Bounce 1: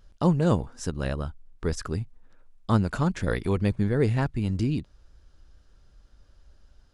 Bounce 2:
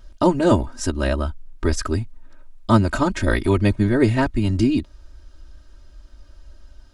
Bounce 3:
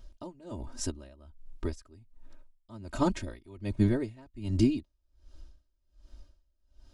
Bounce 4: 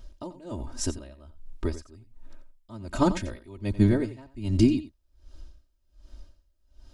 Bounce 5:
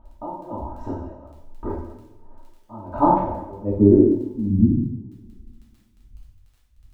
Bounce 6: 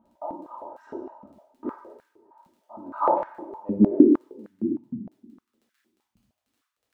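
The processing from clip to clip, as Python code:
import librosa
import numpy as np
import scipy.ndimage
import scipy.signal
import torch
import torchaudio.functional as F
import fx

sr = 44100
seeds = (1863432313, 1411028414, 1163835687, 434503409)

y1 = x + 0.97 * np.pad(x, (int(3.2 * sr / 1000.0), 0))[:len(x)]
y1 = F.gain(torch.from_numpy(y1), 6.0).numpy()
y2 = fx.peak_eq(y1, sr, hz=1500.0, db=-6.5, octaves=0.88)
y2 = y2 * 10.0 ** (-28 * (0.5 - 0.5 * np.cos(2.0 * np.pi * 1.3 * np.arange(len(y2)) / sr)) / 20.0)
y2 = F.gain(torch.from_numpy(y2), -5.0).numpy()
y3 = y2 + 10.0 ** (-14.0 / 20.0) * np.pad(y2, (int(89 * sr / 1000.0), 0))[:len(y2)]
y3 = F.gain(torch.from_numpy(y3), 4.5).numpy()
y4 = fx.filter_sweep_lowpass(y3, sr, from_hz=900.0, to_hz=130.0, start_s=3.11, end_s=4.97, q=5.4)
y4 = fx.dmg_crackle(y4, sr, seeds[0], per_s=12.0, level_db=-42.0)
y4 = fx.rev_double_slope(y4, sr, seeds[1], early_s=0.75, late_s=2.3, knee_db=-22, drr_db=-6.0)
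y4 = F.gain(torch.from_numpy(y4), -4.5).numpy()
y5 = fx.filter_held_highpass(y4, sr, hz=6.5, low_hz=200.0, high_hz=1600.0)
y5 = F.gain(torch.from_numpy(y5), -8.0).numpy()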